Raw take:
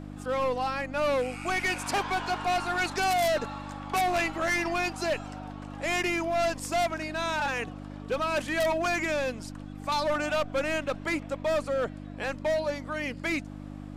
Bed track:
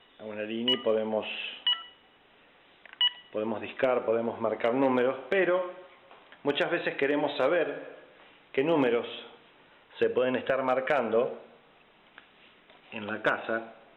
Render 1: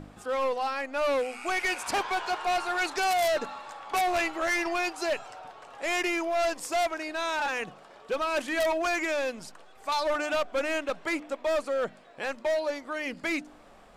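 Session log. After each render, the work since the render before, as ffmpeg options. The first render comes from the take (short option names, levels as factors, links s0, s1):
-af "bandreject=f=50:t=h:w=4,bandreject=f=100:t=h:w=4,bandreject=f=150:t=h:w=4,bandreject=f=200:t=h:w=4,bandreject=f=250:t=h:w=4,bandreject=f=300:t=h:w=4"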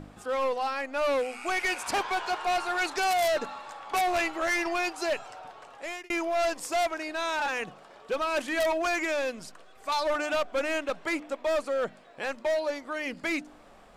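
-filter_complex "[0:a]asettb=1/sr,asplit=3[s0][s1][s2];[s0]atrim=end=9.224[s3];[s1]atrim=start=9.22:end=9.9,asetpts=PTS-STARTPTS,afade=t=in:d=0.004:c=qsin,afade=t=out:st=0.676:d=0.004:c=qsin,bandreject=f=860:w=8.2[s4];[s2]atrim=start=9.896[s5];[s3][s4]acrossfade=d=0.004:c1=hsin:c2=qsin[s6];[s6][s5]acrossfade=d=0.004:c1=qsin:c2=hsin,asplit=2[s7][s8];[s7]atrim=end=6.1,asetpts=PTS-STARTPTS,afade=t=out:st=5.63:d=0.47[s9];[s8]atrim=start=6.1,asetpts=PTS-STARTPTS,afade=t=in:d=0.004:c=hsin[s10];[s9][s10]concat=n=2:v=0:a=1"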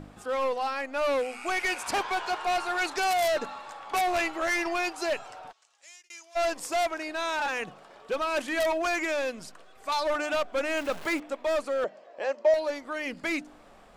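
-filter_complex "[0:a]asplit=3[s0][s1][s2];[s0]afade=t=out:st=5.51:d=0.02[s3];[s1]bandpass=f=6500:t=q:w=2,afade=t=in:st=5.51:d=0.02,afade=t=out:st=6.35:d=0.02[s4];[s2]afade=t=in:st=6.35:d=0.02[s5];[s3][s4][s5]amix=inputs=3:normalize=0,asettb=1/sr,asplit=3[s6][s7][s8];[s6]atrim=end=10.774[s9];[s7]atrim=start=10.77:end=11.2,asetpts=PTS-STARTPTS,afade=t=in:d=0.004:c=qsin,afade=t=out:st=0.426:d=0.004:c=qsin,aeval=exprs='val(0)+0.5*0.0141*sgn(val(0))':c=same[s10];[s8]atrim=start=11.196[s11];[s9][s10]acrossfade=d=0.004:c1=hsin:c2=qsin[s12];[s12][s11]acrossfade=d=0.004:c1=qsin:c2=hsin,asettb=1/sr,asplit=3[s13][s14][s15];[s13]atrim=end=11.844[s16];[s14]atrim=start=11.84:end=12.54,asetpts=PTS-STARTPTS,afade=t=in:d=0.004:c=qsin,afade=t=out:st=0.696:d=0.004:c=qsin,highpass=f=220:w=0.5412,highpass=f=220:w=1.3066,equalizer=f=240:t=q:w=4:g=-9,equalizer=f=580:t=q:w=4:g=10,equalizer=f=1400:t=q:w=4:g=-6,equalizer=f=2300:t=q:w=4:g=-5,equalizer=f=3700:t=q:w=4:g=-9,lowpass=f=6500:w=0.5412,lowpass=f=6500:w=1.3066[s17];[s15]atrim=start=12.536[s18];[s16][s17]acrossfade=d=0.004:c1=hsin:c2=qsin[s19];[s19][s18]acrossfade=d=0.004:c1=qsin:c2=hsin"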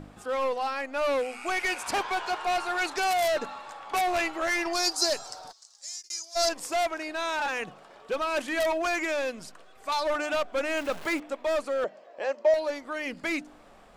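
-filter_complex "[0:a]asettb=1/sr,asplit=3[s0][s1][s2];[s0]atrim=end=4.734[s3];[s1]atrim=start=4.73:end=6.49,asetpts=PTS-STARTPTS,afade=t=in:d=0.004:c=qsin,afade=t=out:st=1.756:d=0.004:c=qsin,highshelf=f=3600:t=q:w=3:g=10[s4];[s2]atrim=start=6.486[s5];[s3][s4]acrossfade=d=0.004:c1=hsin:c2=qsin[s6];[s6][s5]acrossfade=d=0.004:c1=qsin:c2=hsin"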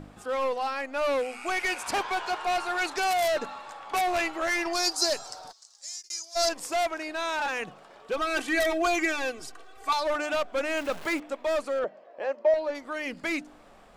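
-filter_complex "[0:a]asettb=1/sr,asplit=3[s0][s1][s2];[s0]atrim=end=8.174[s3];[s1]atrim=start=8.17:end=9.93,asetpts=PTS-STARTPTS,afade=t=in:d=0.004:c=qsin,afade=t=out:st=1.756:d=0.004:c=qsin,aecho=1:1:2.6:0.96,atrim=end_sample=77616[s4];[s2]atrim=start=9.926[s5];[s3][s4]acrossfade=d=0.004:c1=hsin:c2=qsin[s6];[s6][s5]acrossfade=d=0.004:c1=qsin:c2=hsin,asettb=1/sr,asplit=3[s7][s8][s9];[s7]atrim=end=11.794[s10];[s8]atrim=start=11.79:end=12.75,asetpts=PTS-STARTPTS,afade=t=in:d=0.004:c=qsin,afade=t=out:st=0.956:d=0.004:c=qsin,aemphasis=mode=reproduction:type=75kf[s11];[s9]atrim=start=12.746[s12];[s10][s11]acrossfade=d=0.004:c1=hsin:c2=qsin[s13];[s13][s12]acrossfade=d=0.004:c1=qsin:c2=hsin"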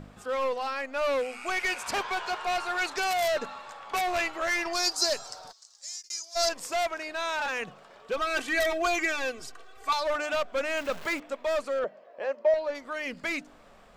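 -af "equalizer=f=315:t=o:w=0.33:g=-7,equalizer=f=800:t=o:w=0.33:g=-4,equalizer=f=10000:t=o:w=0.33:g=-5"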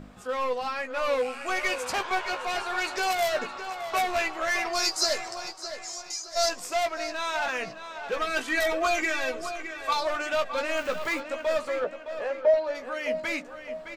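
-filter_complex "[0:a]asplit=2[s0][s1];[s1]adelay=16,volume=0.447[s2];[s0][s2]amix=inputs=2:normalize=0,asplit=2[s3][s4];[s4]adelay=614,lowpass=f=4400:p=1,volume=0.335,asplit=2[s5][s6];[s6]adelay=614,lowpass=f=4400:p=1,volume=0.44,asplit=2[s7][s8];[s8]adelay=614,lowpass=f=4400:p=1,volume=0.44,asplit=2[s9][s10];[s10]adelay=614,lowpass=f=4400:p=1,volume=0.44,asplit=2[s11][s12];[s12]adelay=614,lowpass=f=4400:p=1,volume=0.44[s13];[s3][s5][s7][s9][s11][s13]amix=inputs=6:normalize=0"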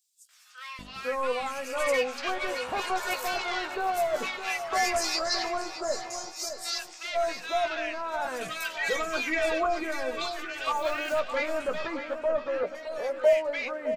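-filter_complex "[0:a]acrossover=split=1500|5600[s0][s1][s2];[s1]adelay=290[s3];[s0]adelay=790[s4];[s4][s3][s2]amix=inputs=3:normalize=0"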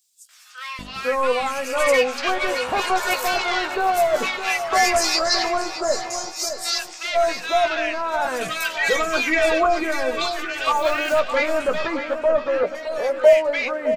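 -af "volume=2.66"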